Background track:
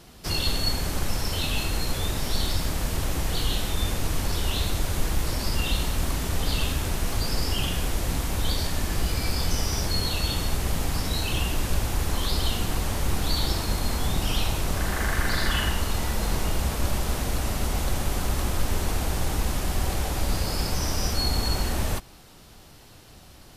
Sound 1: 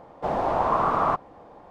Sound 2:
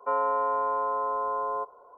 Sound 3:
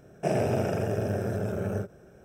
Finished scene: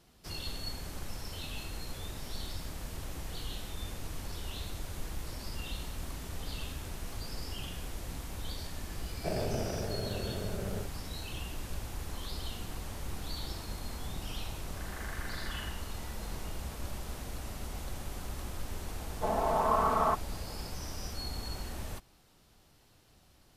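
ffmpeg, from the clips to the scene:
-filter_complex "[0:a]volume=0.2[s0];[1:a]aecho=1:1:4.6:0.77[s1];[3:a]atrim=end=2.24,asetpts=PTS-STARTPTS,volume=0.376,afade=t=in:d=0.004:c=hsin,afade=t=out:st=2.236:d=0.004:c=hsin,adelay=9010[s2];[s1]atrim=end=1.7,asetpts=PTS-STARTPTS,volume=0.422,afade=t=in:d=0.004:c=hsin,afade=t=out:st=1.696:d=0.004:c=hsin,adelay=18990[s3];[s0][s2][s3]amix=inputs=3:normalize=0"

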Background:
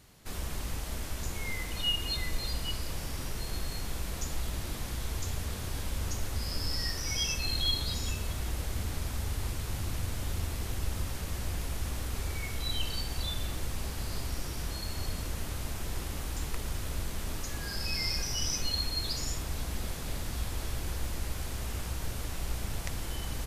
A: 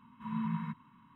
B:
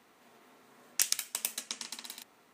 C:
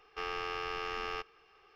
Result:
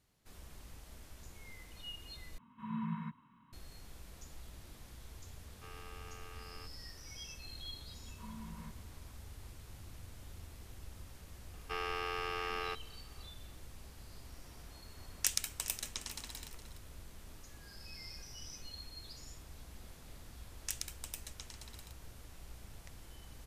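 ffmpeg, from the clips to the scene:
-filter_complex "[1:a]asplit=2[s0][s1];[3:a]asplit=2[s2][s3];[2:a]asplit=2[s4][s5];[0:a]volume=0.141[s6];[s1]acompressor=threshold=0.0141:ratio=6:attack=3.2:release=140:knee=1:detection=peak[s7];[s4]aecho=1:1:415|830|1245:0.2|0.0698|0.0244[s8];[s6]asplit=2[s9][s10];[s9]atrim=end=2.384[s11];[s0]atrim=end=1.15,asetpts=PTS-STARTPTS,volume=0.631[s12];[s10]atrim=start=3.526[s13];[s2]atrim=end=1.75,asetpts=PTS-STARTPTS,volume=0.158,afade=t=in:d=0.004:c=hsin,afade=t=out:st=1.746:d=0.004:c=hsin,adelay=240345S[s14];[s7]atrim=end=1.15,asetpts=PTS-STARTPTS,volume=0.398,afade=t=in:d=0.004:c=hsin,afade=t=out:st=1.146:d=0.004:c=hsin,adelay=7980[s15];[s3]atrim=end=1.75,asetpts=PTS-STARTPTS,volume=0.891,afade=t=in:d=0.004:c=hsin,afade=t=out:st=1.746:d=0.004:c=hsin,adelay=11530[s16];[s8]atrim=end=2.53,asetpts=PTS-STARTPTS,volume=0.631,afade=t=in:d=0.004:c=hsin,afade=t=out:st=2.526:d=0.004:c=hsin,adelay=14250[s17];[s5]atrim=end=2.53,asetpts=PTS-STARTPTS,volume=0.266,afade=t=in:d=0.004:c=hsin,afade=t=out:st=2.526:d=0.004:c=hsin,adelay=19690[s18];[s11][s12]acrossfade=d=0.004:c1=hsin:c2=hsin[s19];[s19][s13]acrossfade=d=0.004:c1=hsin:c2=hsin[s20];[s20][s14][s15][s16][s17][s18]amix=inputs=6:normalize=0"

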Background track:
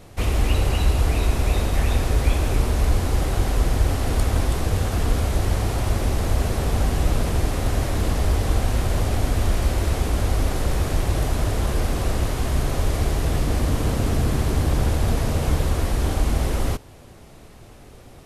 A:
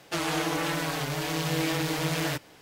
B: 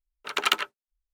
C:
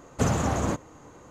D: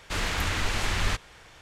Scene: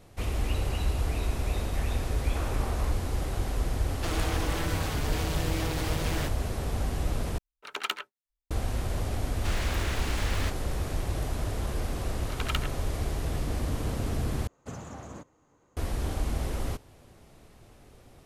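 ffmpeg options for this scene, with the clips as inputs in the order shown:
-filter_complex "[3:a]asplit=2[s0][s1];[2:a]asplit=2[s2][s3];[0:a]volume=0.355[s4];[s0]highpass=590,lowpass=2300[s5];[1:a]asoftclip=type=tanh:threshold=0.0398[s6];[4:a]acrusher=bits=5:mode=log:mix=0:aa=0.000001[s7];[s4]asplit=3[s8][s9][s10];[s8]atrim=end=7.384[s11];[s2]atrim=end=1.13,asetpts=PTS-STARTPTS,volume=0.376[s12];[s9]atrim=start=8.506:end=14.474[s13];[s1]atrim=end=1.3,asetpts=PTS-STARTPTS,volume=0.15[s14];[s10]atrim=start=15.766[s15];[s5]atrim=end=1.3,asetpts=PTS-STARTPTS,volume=0.376,afade=t=in:d=0.004:c=hsin,afade=t=out:st=1.296:d=0.004:c=hsin,adelay=2160[s16];[s6]atrim=end=2.61,asetpts=PTS-STARTPTS,volume=0.841,afade=t=in:d=0.004:c=hsin,afade=t=out:st=2.606:d=0.004:c=hsin,adelay=3910[s17];[s7]atrim=end=1.61,asetpts=PTS-STARTPTS,volume=0.473,afade=t=in:d=0.004:c=hsin,afade=t=out:st=1.606:d=0.004:c=hsin,adelay=9340[s18];[s3]atrim=end=1.13,asetpts=PTS-STARTPTS,volume=0.316,afade=t=in:d=0.004:c=hsin,afade=t=out:st=1.126:d=0.004:c=hsin,adelay=12030[s19];[s11][s12]acrossfade=d=0.004:c1=hsin:c2=hsin[s20];[s20][s13]acrossfade=d=0.004:c1=hsin:c2=hsin[s21];[s21][s14]acrossfade=d=0.004:c1=hsin:c2=hsin[s22];[s22][s15]acrossfade=d=0.004:c1=hsin:c2=hsin[s23];[s23][s16][s17][s18][s19]amix=inputs=5:normalize=0"

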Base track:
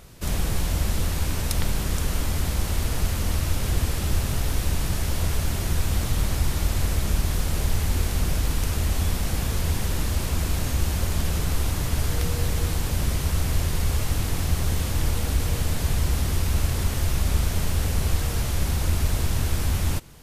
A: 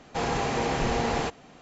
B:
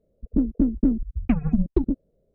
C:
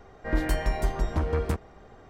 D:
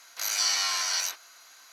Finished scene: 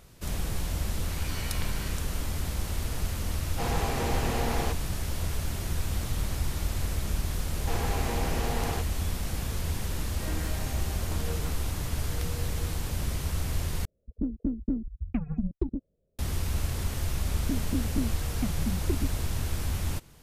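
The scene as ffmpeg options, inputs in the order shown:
-filter_complex "[1:a]asplit=2[s0][s1];[2:a]asplit=2[s2][s3];[0:a]volume=0.473[s4];[4:a]lowpass=f=2700:t=q:w=1.7[s5];[s2]equalizer=f=81:t=o:w=1.5:g=6[s6];[s4]asplit=2[s7][s8];[s7]atrim=end=13.854[s9];[s6]atrim=end=2.34,asetpts=PTS-STARTPTS,volume=0.316[s10];[s8]atrim=start=16.186[s11];[s5]atrim=end=1.72,asetpts=PTS-STARTPTS,volume=0.2,afade=t=in:d=0.004:c=hsin,afade=t=out:st=1.716:d=0.004:c=hsin,adelay=890[s12];[s0]atrim=end=1.61,asetpts=PTS-STARTPTS,volume=0.596,afade=t=in:d=0.004:c=hsin,afade=t=out:st=1.606:d=0.004:c=hsin,adelay=3430[s13];[s1]atrim=end=1.61,asetpts=PTS-STARTPTS,volume=0.473,afade=t=in:d=0.004:c=hsin,afade=t=out:st=1.606:d=0.004:c=hsin,adelay=7520[s14];[3:a]atrim=end=2.09,asetpts=PTS-STARTPTS,volume=0.282,afade=t=in:d=0.004:c=hsin,afade=t=out:st=2.086:d=0.004:c=hsin,adelay=9950[s15];[s3]atrim=end=2.34,asetpts=PTS-STARTPTS,volume=0.299,afade=t=in:d=0.004:c=hsin,afade=t=out:st=2.336:d=0.004:c=hsin,adelay=17130[s16];[s9][s10]acrossfade=d=0.004:c1=hsin:c2=hsin[s17];[s17][s11]acrossfade=d=0.004:c1=hsin:c2=hsin[s18];[s18][s12][s13][s14][s15][s16]amix=inputs=6:normalize=0"

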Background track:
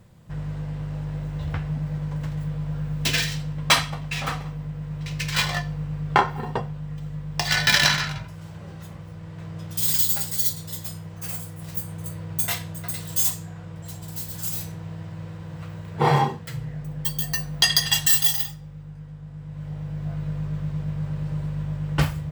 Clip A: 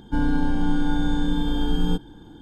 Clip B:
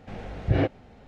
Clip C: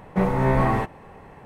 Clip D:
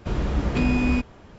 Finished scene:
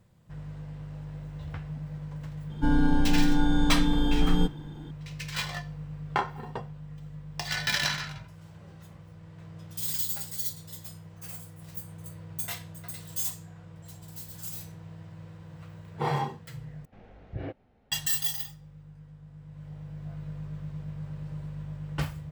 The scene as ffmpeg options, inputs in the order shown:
-filter_complex "[0:a]volume=0.335[s0];[2:a]lowpass=f=3200:p=1[s1];[s0]asplit=2[s2][s3];[s2]atrim=end=16.854[s4];[s1]atrim=end=1.07,asetpts=PTS-STARTPTS,volume=0.2[s5];[s3]atrim=start=17.916[s6];[1:a]atrim=end=2.41,asetpts=PTS-STARTPTS,volume=0.891,afade=t=in:d=0.004:c=hsin,afade=t=out:st=2.406:d=0.004:c=hsin,adelay=2500[s7];[s4][s5]acrossfade=d=0.004:c1=hsin:c2=hsin[s8];[s8][s6]acrossfade=d=0.004:c1=hsin:c2=hsin[s9];[s9][s7]amix=inputs=2:normalize=0"

